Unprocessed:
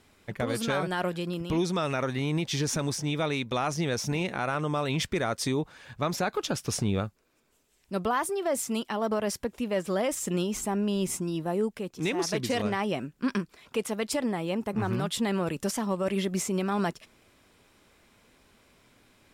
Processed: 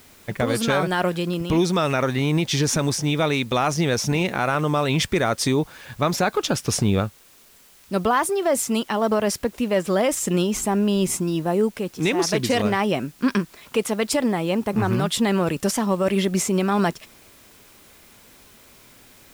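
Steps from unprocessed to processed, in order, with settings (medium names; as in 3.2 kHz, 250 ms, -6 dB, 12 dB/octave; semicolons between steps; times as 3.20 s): word length cut 10-bit, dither triangular; trim +7.5 dB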